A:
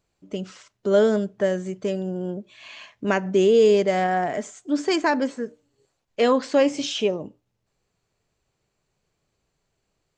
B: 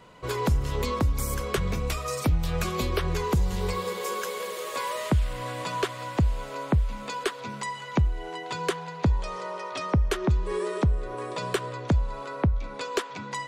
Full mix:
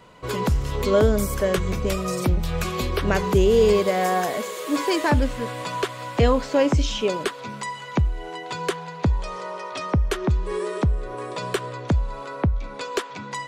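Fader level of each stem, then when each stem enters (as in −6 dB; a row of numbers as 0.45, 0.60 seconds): −1.0, +2.0 decibels; 0.00, 0.00 seconds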